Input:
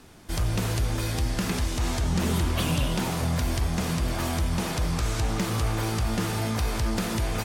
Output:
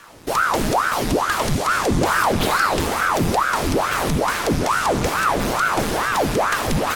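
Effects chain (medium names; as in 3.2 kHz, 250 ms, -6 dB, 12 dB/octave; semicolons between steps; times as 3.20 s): tape speed +7%; ring modulator with a swept carrier 760 Hz, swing 90%, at 2.3 Hz; trim +9 dB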